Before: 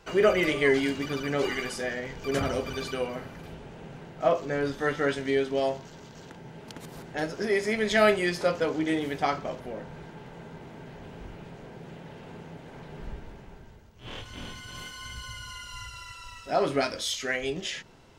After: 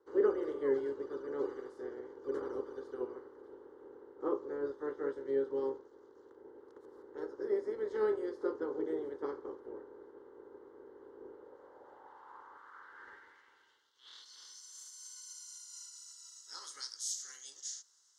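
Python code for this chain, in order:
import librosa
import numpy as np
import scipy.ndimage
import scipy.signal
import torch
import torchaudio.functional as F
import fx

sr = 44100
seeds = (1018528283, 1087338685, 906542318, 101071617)

y = fx.spec_clip(x, sr, under_db=17)
y = fx.filter_sweep_bandpass(y, sr, from_hz=410.0, to_hz=6500.0, start_s=11.27, end_s=14.75, q=3.0)
y = fx.fixed_phaser(y, sr, hz=670.0, stages=6)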